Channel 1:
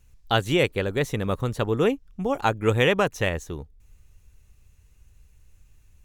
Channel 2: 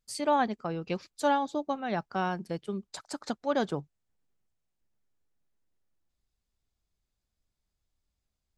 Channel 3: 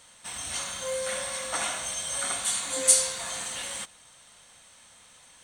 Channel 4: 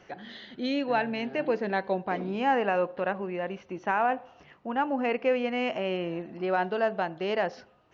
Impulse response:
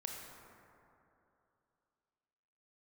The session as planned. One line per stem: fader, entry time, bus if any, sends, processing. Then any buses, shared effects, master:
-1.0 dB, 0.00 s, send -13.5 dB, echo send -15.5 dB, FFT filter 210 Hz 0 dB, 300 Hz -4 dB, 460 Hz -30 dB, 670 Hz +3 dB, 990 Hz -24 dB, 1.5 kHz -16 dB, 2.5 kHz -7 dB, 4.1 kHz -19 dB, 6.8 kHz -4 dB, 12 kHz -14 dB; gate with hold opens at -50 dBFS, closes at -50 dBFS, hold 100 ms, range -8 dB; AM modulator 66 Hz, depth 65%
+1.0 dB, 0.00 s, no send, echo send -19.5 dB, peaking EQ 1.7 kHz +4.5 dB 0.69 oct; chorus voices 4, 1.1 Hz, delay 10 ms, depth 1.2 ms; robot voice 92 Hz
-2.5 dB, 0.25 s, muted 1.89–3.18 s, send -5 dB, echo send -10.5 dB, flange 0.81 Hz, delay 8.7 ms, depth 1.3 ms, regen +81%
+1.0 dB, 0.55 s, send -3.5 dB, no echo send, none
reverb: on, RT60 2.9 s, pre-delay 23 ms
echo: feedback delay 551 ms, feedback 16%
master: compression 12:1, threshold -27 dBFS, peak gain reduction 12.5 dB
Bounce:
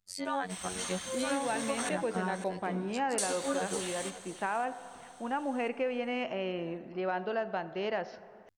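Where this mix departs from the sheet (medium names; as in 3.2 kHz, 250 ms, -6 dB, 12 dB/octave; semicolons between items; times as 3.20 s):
stem 1: muted; stem 4 +1.0 dB -> -6.0 dB; reverb return -7.0 dB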